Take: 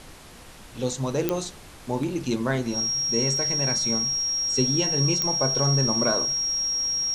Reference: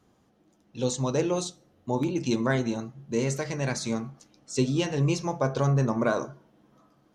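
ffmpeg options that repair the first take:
-af "adeclick=t=4,bandreject=f=5.6k:w=30,afftdn=nr=19:nf=-45"

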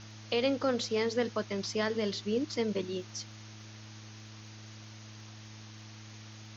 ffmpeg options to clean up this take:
-af "adeclick=t=4,bandreject=f=107.7:t=h:w=4,bandreject=f=215.4:t=h:w=4,bandreject=f=323.1:t=h:w=4,afwtdn=0.0035"

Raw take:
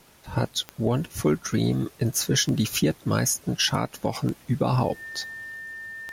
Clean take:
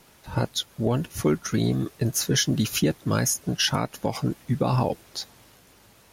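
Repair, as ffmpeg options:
-af "adeclick=t=4,bandreject=f=1.8k:w=30"

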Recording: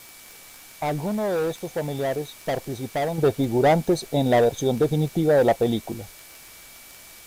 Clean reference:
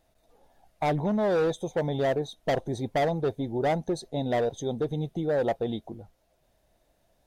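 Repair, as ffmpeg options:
-af "adeclick=t=4,bandreject=f=2.3k:w=30,afwtdn=0.0056,asetnsamples=n=441:p=0,asendcmd='3.18 volume volume -8dB',volume=0dB"

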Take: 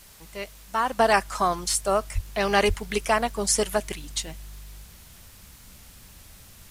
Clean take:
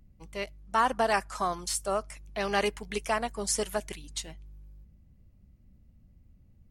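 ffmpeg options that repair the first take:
-filter_complex "[0:a]asplit=3[a][b][c];[a]afade=t=out:st=2.14:d=0.02[d];[b]highpass=f=140:w=0.5412,highpass=f=140:w=1.3066,afade=t=in:st=2.14:d=0.02,afade=t=out:st=2.26:d=0.02[e];[c]afade=t=in:st=2.26:d=0.02[f];[d][e][f]amix=inputs=3:normalize=0,asplit=3[g][h][i];[g]afade=t=out:st=2.67:d=0.02[j];[h]highpass=f=140:w=0.5412,highpass=f=140:w=1.3066,afade=t=in:st=2.67:d=0.02,afade=t=out:st=2.79:d=0.02[k];[i]afade=t=in:st=2.79:d=0.02[l];[j][k][l]amix=inputs=3:normalize=0,afwtdn=0.0032,asetnsamples=n=441:p=0,asendcmd='0.99 volume volume -6.5dB',volume=0dB"

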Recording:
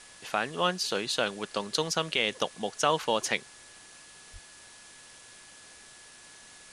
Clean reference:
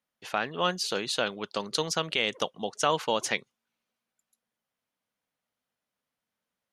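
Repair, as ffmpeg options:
-filter_complex "[0:a]bandreject=f=1.7k:w=30,asplit=3[a][b][c];[a]afade=t=out:st=4.32:d=0.02[d];[b]highpass=f=140:w=0.5412,highpass=f=140:w=1.3066,afade=t=in:st=4.32:d=0.02,afade=t=out:st=4.44:d=0.02[e];[c]afade=t=in:st=4.44:d=0.02[f];[d][e][f]amix=inputs=3:normalize=0,afwtdn=0.0035"

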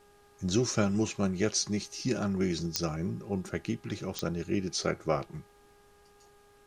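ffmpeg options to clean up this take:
-af "adeclick=t=4,bandreject=f=408.4:t=h:w=4,bandreject=f=816.8:t=h:w=4,bandreject=f=1.2252k:t=h:w=4,bandreject=f=1.6336k:t=h:w=4,agate=range=-21dB:threshold=-52dB"

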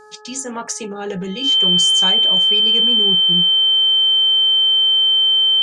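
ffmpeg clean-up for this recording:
-af "bandreject=f=425:t=h:w=4,bandreject=f=850:t=h:w=4,bandreject=f=1.275k:t=h:w=4,bandreject=f=1.7k:t=h:w=4,bandreject=f=3.1k:w=30"

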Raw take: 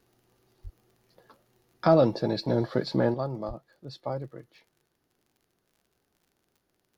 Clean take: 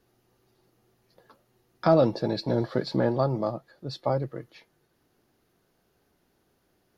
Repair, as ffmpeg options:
-filter_complex "[0:a]adeclick=t=4,asplit=3[a][b][c];[a]afade=t=out:st=0.63:d=0.02[d];[b]highpass=f=140:w=0.5412,highpass=f=140:w=1.3066,afade=t=in:st=0.63:d=0.02,afade=t=out:st=0.75:d=0.02[e];[c]afade=t=in:st=0.75:d=0.02[f];[d][e][f]amix=inputs=3:normalize=0,asplit=3[g][h][i];[g]afade=t=out:st=3.47:d=0.02[j];[h]highpass=f=140:w=0.5412,highpass=f=140:w=1.3066,afade=t=in:st=3.47:d=0.02,afade=t=out:st=3.59:d=0.02[k];[i]afade=t=in:st=3.59:d=0.02[l];[j][k][l]amix=inputs=3:normalize=0,asetnsamples=n=441:p=0,asendcmd='3.14 volume volume 6.5dB',volume=0dB"

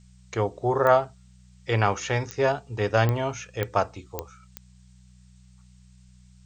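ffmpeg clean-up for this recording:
-af "adeclick=t=4,bandreject=f=61.9:t=h:w=4,bandreject=f=123.8:t=h:w=4,bandreject=f=185.7:t=h:w=4,agate=range=-21dB:threshold=-46dB"

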